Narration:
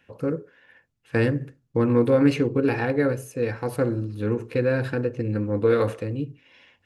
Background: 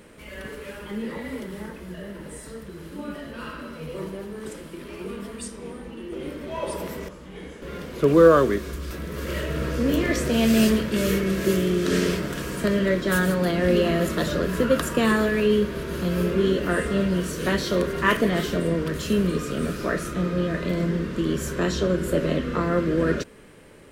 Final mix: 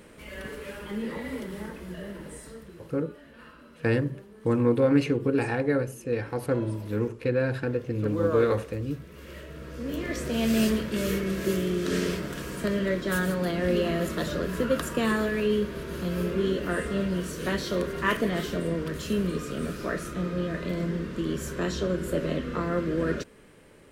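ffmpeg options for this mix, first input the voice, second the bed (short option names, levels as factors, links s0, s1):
-filter_complex "[0:a]adelay=2700,volume=0.708[s0];[1:a]volume=2.51,afade=t=out:st=2.1:d=0.94:silence=0.223872,afade=t=in:st=9.65:d=0.89:silence=0.334965[s1];[s0][s1]amix=inputs=2:normalize=0"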